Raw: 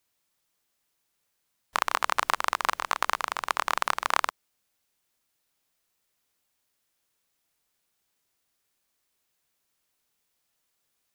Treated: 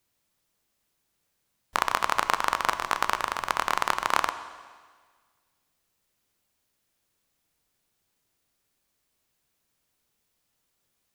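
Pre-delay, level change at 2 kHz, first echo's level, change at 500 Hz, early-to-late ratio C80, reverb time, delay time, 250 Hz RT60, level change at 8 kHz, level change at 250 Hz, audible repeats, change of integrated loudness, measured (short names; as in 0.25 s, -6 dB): 11 ms, +0.5 dB, none, +3.0 dB, 13.0 dB, 1.6 s, none, 1.6 s, +0.5 dB, +5.5 dB, none, +1.0 dB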